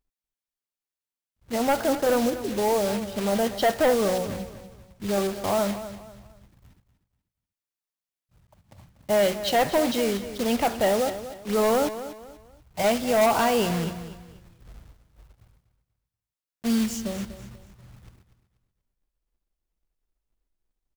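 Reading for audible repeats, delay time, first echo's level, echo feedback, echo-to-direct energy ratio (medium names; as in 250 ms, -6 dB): 3, 242 ms, -13.0 dB, 32%, -12.5 dB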